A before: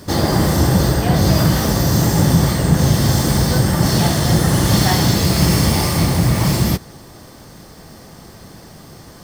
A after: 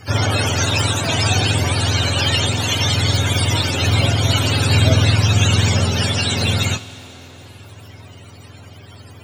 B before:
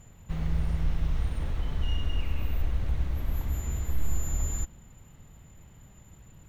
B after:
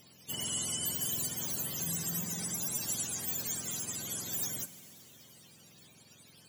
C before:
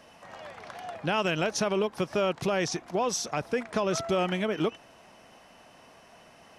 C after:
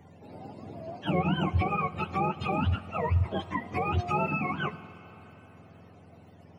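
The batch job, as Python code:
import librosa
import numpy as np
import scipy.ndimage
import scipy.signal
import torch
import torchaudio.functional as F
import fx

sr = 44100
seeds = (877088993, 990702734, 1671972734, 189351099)

y = fx.octave_mirror(x, sr, pivot_hz=690.0)
y = fx.rev_schroeder(y, sr, rt60_s=3.8, comb_ms=29, drr_db=15.0)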